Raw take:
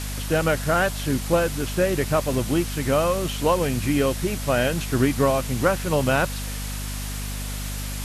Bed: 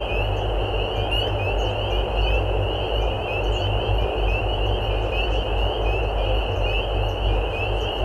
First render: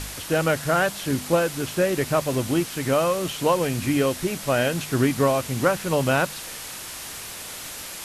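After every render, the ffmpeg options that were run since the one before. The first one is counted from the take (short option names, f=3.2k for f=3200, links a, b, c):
-af "bandreject=f=50:t=h:w=4,bandreject=f=100:t=h:w=4,bandreject=f=150:t=h:w=4,bandreject=f=200:t=h:w=4,bandreject=f=250:t=h:w=4"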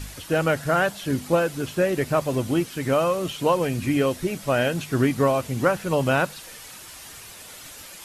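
-af "afftdn=nr=8:nf=-36"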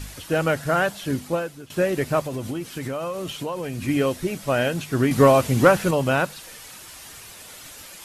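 -filter_complex "[0:a]asplit=3[a][b][c];[a]afade=t=out:st=2.21:d=0.02[d];[b]acompressor=threshold=-25dB:ratio=6:attack=3.2:release=140:knee=1:detection=peak,afade=t=in:st=2.21:d=0.02,afade=t=out:st=3.87:d=0.02[e];[c]afade=t=in:st=3.87:d=0.02[f];[d][e][f]amix=inputs=3:normalize=0,asettb=1/sr,asplit=3[g][h][i];[g]atrim=end=5.114[j];[h]atrim=start=5.11:end=5.91,asetpts=PTS-STARTPTS,afade=t=in:d=0.004:c=qsin,afade=t=out:st=0.796:d=0.004:c=qsin,acontrast=75[k];[i]atrim=start=5.906[l];[j][k]acrossfade=d=0.004:c1=hsin:c2=qsin[m];[m][l]acrossfade=d=0.004:c1=qsin:c2=hsin,asplit=2[n][o];[n]atrim=end=1.7,asetpts=PTS-STARTPTS,afade=t=out:st=1.08:d=0.62:silence=0.11885[p];[o]atrim=start=1.7,asetpts=PTS-STARTPTS,afade=t=in:d=0.004:c=hsin:silence=0.11885[q];[p][q]concat=n=2:v=0:a=1"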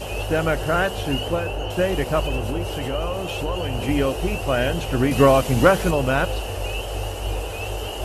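-filter_complex "[1:a]volume=-5dB[a];[0:a][a]amix=inputs=2:normalize=0"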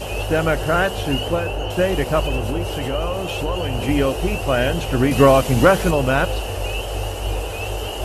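-af "volume=2.5dB,alimiter=limit=-2dB:level=0:latency=1"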